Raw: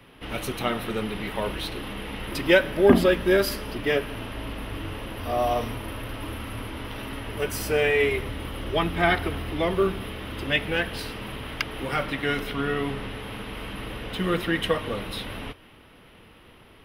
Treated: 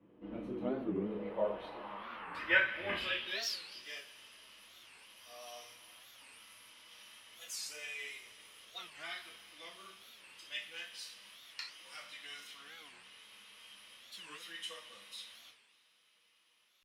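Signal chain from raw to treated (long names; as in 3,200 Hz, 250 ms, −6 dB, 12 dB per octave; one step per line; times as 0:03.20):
0:02.31–0:03.25: sub-octave generator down 2 octaves, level +3 dB
convolution reverb, pre-delay 3 ms, DRR −4.5 dB
band-pass filter sweep 300 Hz → 6,600 Hz, 0:00.78–0:03.97
wow of a warped record 45 rpm, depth 250 cents
level −7 dB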